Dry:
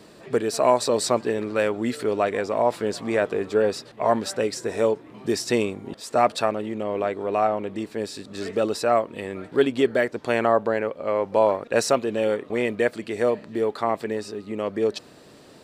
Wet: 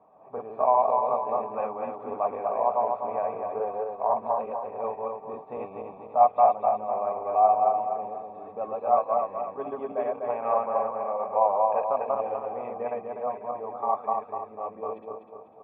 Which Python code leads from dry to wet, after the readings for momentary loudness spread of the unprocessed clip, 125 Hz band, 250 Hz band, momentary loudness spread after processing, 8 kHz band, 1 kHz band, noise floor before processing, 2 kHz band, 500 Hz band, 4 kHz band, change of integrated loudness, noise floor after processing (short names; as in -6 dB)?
9 LU, under -15 dB, -16.5 dB, 15 LU, under -40 dB, +3.5 dB, -49 dBFS, under -15 dB, -5.5 dB, under -35 dB, -3.0 dB, -48 dBFS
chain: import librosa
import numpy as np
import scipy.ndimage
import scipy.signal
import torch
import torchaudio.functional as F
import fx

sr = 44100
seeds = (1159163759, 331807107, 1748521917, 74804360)

y = fx.reverse_delay_fb(x, sr, ms=124, feedback_pct=67, wet_db=-0.5)
y = fx.formant_cascade(y, sr, vowel='a')
y = fx.notch_comb(y, sr, f0_hz=350.0)
y = fx.dynamic_eq(y, sr, hz=2400.0, q=1.2, threshold_db=-53.0, ratio=4.0, max_db=5)
y = F.gain(torch.from_numpy(y), 7.5).numpy()